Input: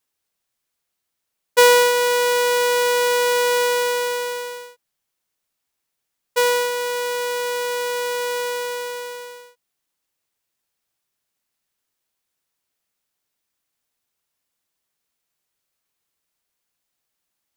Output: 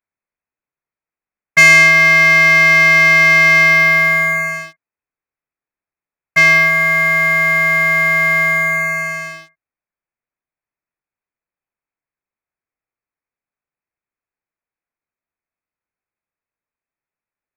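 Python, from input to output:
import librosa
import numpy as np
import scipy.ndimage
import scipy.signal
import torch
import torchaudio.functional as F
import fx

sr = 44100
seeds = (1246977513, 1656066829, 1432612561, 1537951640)

y = fx.freq_invert(x, sr, carrier_hz=2600)
y = fx.leveller(y, sr, passes=3)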